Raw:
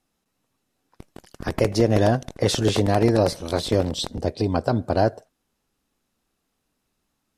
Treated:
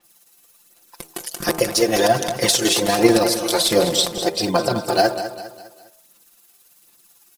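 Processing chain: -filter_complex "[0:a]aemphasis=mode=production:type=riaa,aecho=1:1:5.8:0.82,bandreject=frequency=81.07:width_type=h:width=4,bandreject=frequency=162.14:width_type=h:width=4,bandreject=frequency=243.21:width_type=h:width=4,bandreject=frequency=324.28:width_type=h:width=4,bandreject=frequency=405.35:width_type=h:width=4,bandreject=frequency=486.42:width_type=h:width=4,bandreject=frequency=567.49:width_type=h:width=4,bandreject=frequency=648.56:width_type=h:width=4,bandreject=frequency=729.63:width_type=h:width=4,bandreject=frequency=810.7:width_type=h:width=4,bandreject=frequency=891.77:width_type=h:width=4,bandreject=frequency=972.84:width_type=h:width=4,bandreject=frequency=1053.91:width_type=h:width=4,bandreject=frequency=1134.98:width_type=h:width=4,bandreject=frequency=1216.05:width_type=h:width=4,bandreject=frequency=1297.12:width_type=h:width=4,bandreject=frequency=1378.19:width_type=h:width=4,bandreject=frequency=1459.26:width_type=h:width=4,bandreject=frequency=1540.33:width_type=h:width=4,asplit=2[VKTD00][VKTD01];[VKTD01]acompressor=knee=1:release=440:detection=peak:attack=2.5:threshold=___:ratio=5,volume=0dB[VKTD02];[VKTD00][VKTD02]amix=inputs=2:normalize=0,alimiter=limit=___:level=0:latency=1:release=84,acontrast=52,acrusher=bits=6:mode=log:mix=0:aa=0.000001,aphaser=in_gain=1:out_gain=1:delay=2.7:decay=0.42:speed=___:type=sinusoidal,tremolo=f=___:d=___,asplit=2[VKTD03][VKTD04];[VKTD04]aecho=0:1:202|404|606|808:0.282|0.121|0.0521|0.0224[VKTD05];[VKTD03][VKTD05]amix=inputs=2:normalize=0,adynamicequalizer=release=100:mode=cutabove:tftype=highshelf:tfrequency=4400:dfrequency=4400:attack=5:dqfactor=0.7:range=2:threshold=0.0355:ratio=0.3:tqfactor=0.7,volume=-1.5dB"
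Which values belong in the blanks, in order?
-29dB, -8.5dB, 1.3, 18, 0.45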